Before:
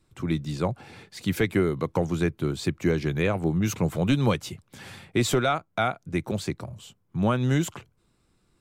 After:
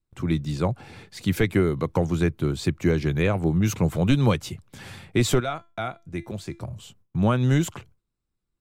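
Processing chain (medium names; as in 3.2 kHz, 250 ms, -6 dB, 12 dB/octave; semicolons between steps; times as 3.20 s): bass shelf 69 Hz +12 dB; gate with hold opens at -45 dBFS; 5.40–6.61 s: feedback comb 340 Hz, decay 0.27 s, harmonics all, mix 60%; trim +1 dB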